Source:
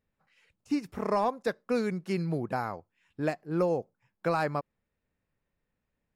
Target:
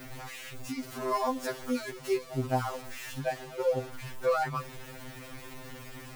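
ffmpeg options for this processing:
-filter_complex "[0:a]aeval=exprs='val(0)+0.5*0.0178*sgn(val(0))':c=same,asettb=1/sr,asplit=3[a][b][c];[a]atrim=end=0.884[d];[b]atrim=start=0.88:end=3.21,asetpts=PTS-STARTPTS,afade=t=in:d=0.004:c=qsin,afade=t=out:st=2.326:d=0.004:c=qsin,bass=f=250:g=0,treble=f=4k:g=4[e];[c]atrim=start=3.206[f];[d][e]acrossfade=d=0.004:c1=hsin:c2=qsin[g];[g][f]acrossfade=d=0.004:c1=qsin:c2=hsin,afftfilt=real='re*2.45*eq(mod(b,6),0)':imag='im*2.45*eq(mod(b,6),0)':win_size=2048:overlap=0.75"

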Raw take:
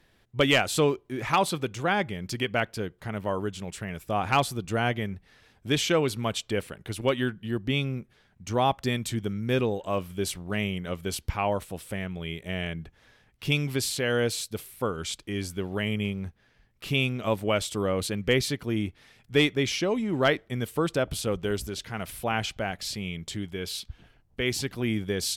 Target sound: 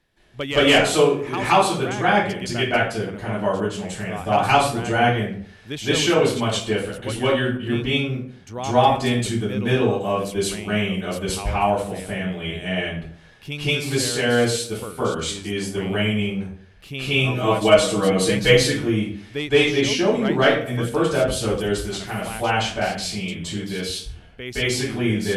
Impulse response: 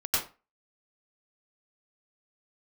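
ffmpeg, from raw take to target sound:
-filter_complex "[0:a]asettb=1/sr,asplit=3[a][b][c];[a]atrim=end=17.074[d];[b]atrim=start=17.07:end=18.63,asetpts=PTS-STARTPTS,afade=t=in:d=0.004:c=qsin,afade=t=out:st=1.556:d=0.004:c=qsin,aecho=1:1:6.3:0.87,atrim=end_sample=68796[e];[c]atrim=start=18.626[f];[d][e]acrossfade=d=0.004:c1=hsin:c2=qsin[g];[g][f]acrossfade=d=0.004:c1=qsin:c2=hsin[h];[1:a]atrim=start_sample=2205,asetrate=23814,aresample=44100[i];[h][i]afir=irnorm=-1:irlink=0,volume=-7dB"

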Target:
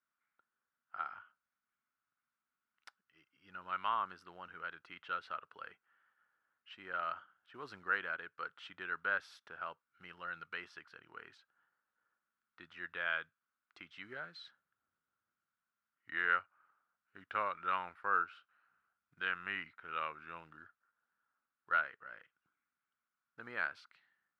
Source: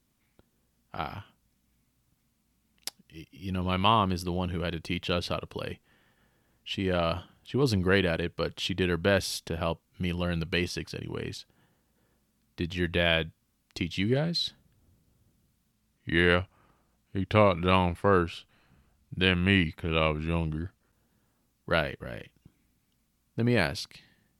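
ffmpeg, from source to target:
-af "acrusher=bits=8:mode=log:mix=0:aa=0.000001,bandpass=f=1.4k:t=q:w=6:csg=0,volume=1dB"

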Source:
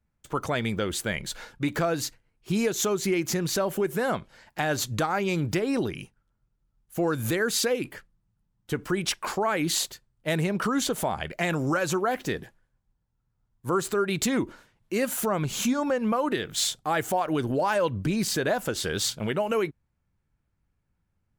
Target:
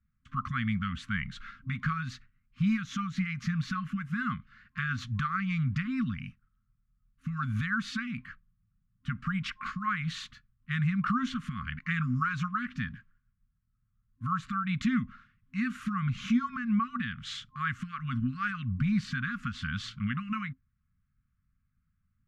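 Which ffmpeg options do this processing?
-af "lowpass=2.1k,afftfilt=real='re*(1-between(b*sr/4096,270,1100))':imag='im*(1-between(b*sr/4096,270,1100))':win_size=4096:overlap=0.75,asetrate=42336,aresample=44100"

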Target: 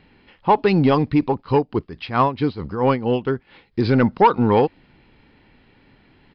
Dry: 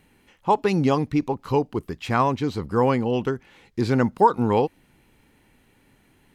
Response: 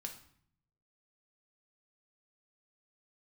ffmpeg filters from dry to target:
-filter_complex "[0:a]asplit=3[a][b][c];[a]afade=t=out:st=1.4:d=0.02[d];[b]tremolo=f=4.5:d=0.75,afade=t=in:st=1.4:d=0.02,afade=t=out:st=3.83:d=0.02[e];[c]afade=t=in:st=3.83:d=0.02[f];[d][e][f]amix=inputs=3:normalize=0,asoftclip=type=tanh:threshold=-11dB,aresample=11025,aresample=44100,volume=5.5dB"

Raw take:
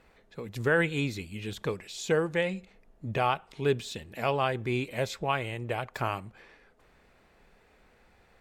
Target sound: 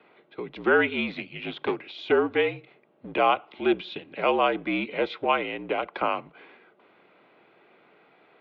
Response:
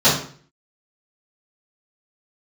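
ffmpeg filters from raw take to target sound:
-filter_complex "[0:a]bandreject=f=1.8k:w=7.2,acrossover=split=410|920|2000[a][b][c][d];[a]aeval=exprs='clip(val(0),-1,0.02)':c=same[e];[e][b][c][d]amix=inputs=4:normalize=0,asettb=1/sr,asplit=3[f][g][h];[f]atrim=end=1.104[i];[g]atrim=start=1.1:end=1.91,asetpts=PTS-STARTPTS,afade=t=in:d=0.004:c=qsin,afade=t=out:st=0.806:d=0.004:c=qsin,aeval=exprs='0.133*(cos(1*acos(clip(val(0)/0.133,-1,1)))-cos(1*PI/2))+0.0119*(cos(8*acos(clip(val(0)/0.133,-1,1)))-cos(8*PI/2))':c=same[j];[h]atrim=start=1.906[k];[i][j]acrossfade=d=0.004:c1=hsin:c2=qsin[l];[l][k]acrossfade=d=0.004:c1=qsin:c2=hsin,highpass=f=270:t=q:w=0.5412,highpass=f=270:t=q:w=1.307,lowpass=f=3.6k:t=q:w=0.5176,lowpass=f=3.6k:t=q:w=0.7071,lowpass=f=3.6k:t=q:w=1.932,afreqshift=-56,volume=6dB"

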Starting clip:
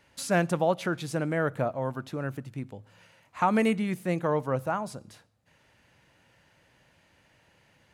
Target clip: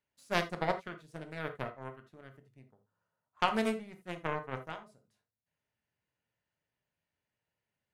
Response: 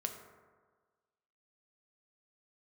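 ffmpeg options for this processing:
-filter_complex "[0:a]asettb=1/sr,asplit=3[a][b][c];[a]atrim=end=2.684[d];[b]atrim=start=2.68:end=3.4,asetpts=PTS-STARTPTS,afade=t=in:d=0.004:c=qsin,afade=t=out:st=0.716:d=0.004:c=qsin,highshelf=f=1.7k:t=q:w=3:g=-8[e];[c]atrim=start=3.396[f];[d][e]acrossfade=d=0.004:c1=hsin:c2=qsin[g];[g][f]acrossfade=d=0.004:c1=qsin:c2=hsin,aeval=exprs='0.251*(cos(1*acos(clip(val(0)/0.251,-1,1)))-cos(1*PI/2))+0.0794*(cos(3*acos(clip(val(0)/0.251,-1,1)))-cos(3*PI/2))':c=same[h];[1:a]atrim=start_sample=2205,atrim=end_sample=3969[i];[h][i]afir=irnorm=-1:irlink=0"

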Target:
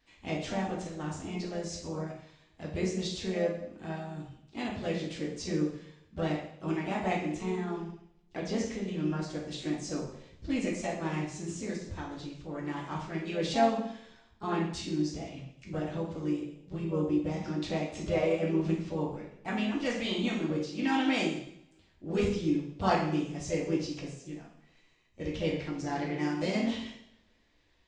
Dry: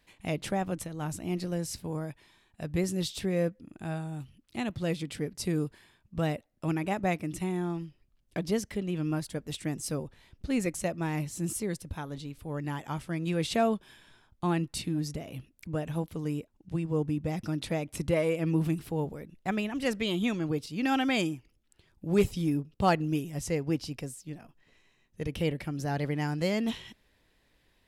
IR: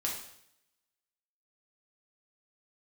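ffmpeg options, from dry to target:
-filter_complex "[1:a]atrim=start_sample=2205[a];[0:a][a]afir=irnorm=-1:irlink=0,aresample=16000,aresample=44100,asplit=2[b][c];[c]asetrate=52444,aresample=44100,atempo=0.840896,volume=-8dB[d];[b][d]amix=inputs=2:normalize=0,volume=-5dB"

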